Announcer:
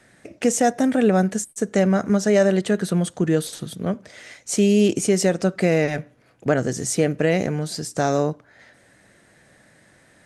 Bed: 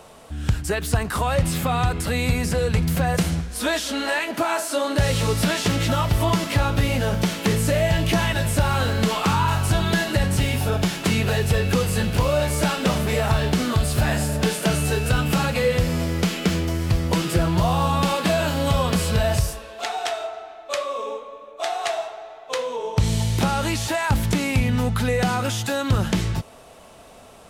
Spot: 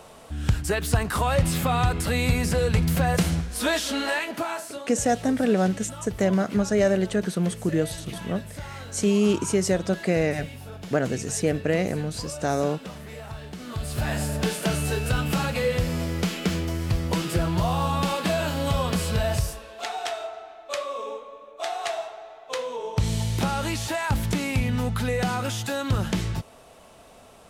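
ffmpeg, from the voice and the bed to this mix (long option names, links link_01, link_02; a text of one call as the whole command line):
ffmpeg -i stem1.wav -i stem2.wav -filter_complex "[0:a]adelay=4450,volume=-4dB[link_01];[1:a]volume=12.5dB,afade=type=out:start_time=3.95:duration=0.92:silence=0.149624,afade=type=in:start_time=13.58:duration=0.65:silence=0.211349[link_02];[link_01][link_02]amix=inputs=2:normalize=0" out.wav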